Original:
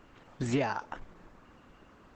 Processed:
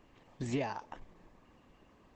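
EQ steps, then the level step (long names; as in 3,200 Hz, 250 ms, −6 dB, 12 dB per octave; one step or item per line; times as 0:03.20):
parametric band 1,400 Hz −12 dB 0.24 octaves
−5.0 dB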